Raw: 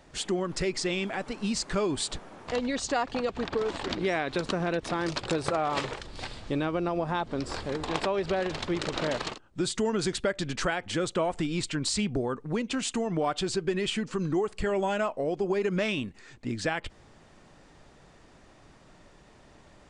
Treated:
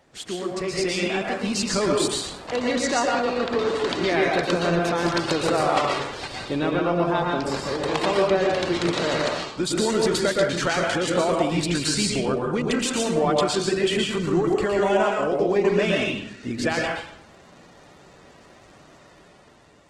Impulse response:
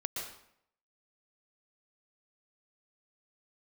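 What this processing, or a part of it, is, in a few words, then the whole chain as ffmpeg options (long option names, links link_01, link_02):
far-field microphone of a smart speaker: -filter_complex "[1:a]atrim=start_sample=2205[link_01];[0:a][link_01]afir=irnorm=-1:irlink=0,highpass=frequency=140:poles=1,dynaudnorm=framelen=350:gausssize=5:maxgain=5.5dB" -ar 48000 -c:a libopus -b:a 16k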